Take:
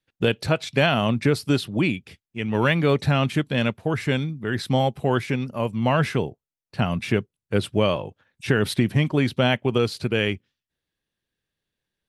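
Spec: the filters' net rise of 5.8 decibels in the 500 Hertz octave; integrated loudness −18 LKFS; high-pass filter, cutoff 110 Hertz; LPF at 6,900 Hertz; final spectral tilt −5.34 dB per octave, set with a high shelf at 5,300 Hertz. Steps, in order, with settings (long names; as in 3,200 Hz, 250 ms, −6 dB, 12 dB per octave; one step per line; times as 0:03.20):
high-pass filter 110 Hz
low-pass filter 6,900 Hz
parametric band 500 Hz +7 dB
high-shelf EQ 5,300 Hz −6 dB
level +3 dB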